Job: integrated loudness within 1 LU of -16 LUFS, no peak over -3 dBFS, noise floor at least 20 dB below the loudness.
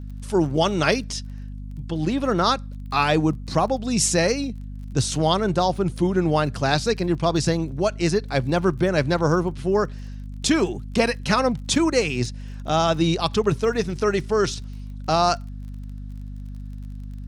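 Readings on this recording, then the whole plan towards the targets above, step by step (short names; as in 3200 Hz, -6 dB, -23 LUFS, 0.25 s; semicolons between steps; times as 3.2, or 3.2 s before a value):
ticks 30/s; hum 50 Hz; harmonics up to 250 Hz; hum level -32 dBFS; loudness -22.5 LUFS; peak -5.0 dBFS; loudness target -16.0 LUFS
-> de-click; de-hum 50 Hz, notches 5; gain +6.5 dB; limiter -3 dBFS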